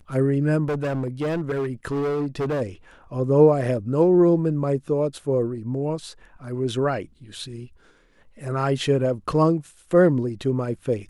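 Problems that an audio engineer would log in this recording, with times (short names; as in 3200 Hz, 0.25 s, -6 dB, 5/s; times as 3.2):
0.68–2.62 clipped -21.5 dBFS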